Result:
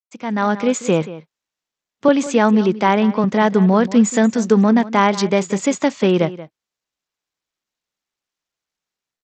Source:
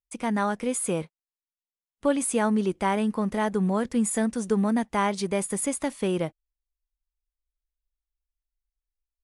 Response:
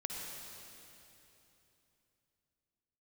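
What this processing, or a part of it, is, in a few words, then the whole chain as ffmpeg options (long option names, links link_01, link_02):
Bluetooth headset: -filter_complex "[0:a]asettb=1/sr,asplit=3[link_01][link_02][link_03];[link_01]atrim=end=2.084[link_04];[link_02]atrim=start=2.08:end=3.24,asetpts=PTS-STARTPTS,afade=type=in:duration=0.004:curve=qsin,afade=type=out:start_time=1.156:duration=0.004:curve=qsin,highpass=frequency=130:width=0.5412,highpass=frequency=130:width=1.3066[link_05];[link_03]atrim=start=3.236[link_06];[link_04][link_05]acrossfade=duration=0.004:curve1=hsin:curve2=qsin[link_07];[link_07][link_06]acrossfade=duration=0.004:curve1=qsin:curve2=hsin,highpass=frequency=120:width=0.5412,highpass=frequency=120:width=1.3066,asplit=2[link_08][link_09];[link_09]adelay=180.8,volume=-16dB,highshelf=frequency=4000:gain=-4.07[link_10];[link_08][link_10]amix=inputs=2:normalize=0,dynaudnorm=framelen=120:gausssize=7:maxgain=12.5dB,aresample=16000,aresample=44100" -ar 32000 -c:a sbc -b:a 64k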